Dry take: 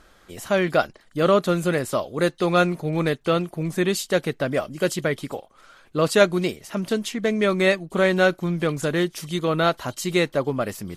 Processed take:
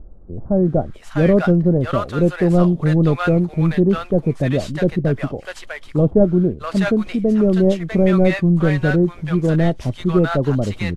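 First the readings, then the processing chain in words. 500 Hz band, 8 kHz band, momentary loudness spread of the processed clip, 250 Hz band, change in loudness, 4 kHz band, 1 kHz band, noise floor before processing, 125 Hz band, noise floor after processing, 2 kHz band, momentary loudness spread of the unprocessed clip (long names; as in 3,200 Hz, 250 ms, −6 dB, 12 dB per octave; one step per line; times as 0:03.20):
+2.5 dB, can't be measured, 7 LU, +8.5 dB, +5.0 dB, −6.0 dB, −1.0 dB, −56 dBFS, +11.0 dB, −39 dBFS, −2.0 dB, 8 LU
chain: variable-slope delta modulation 64 kbit/s
RIAA equalisation playback
multiband delay without the direct sound lows, highs 650 ms, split 780 Hz
level +1.5 dB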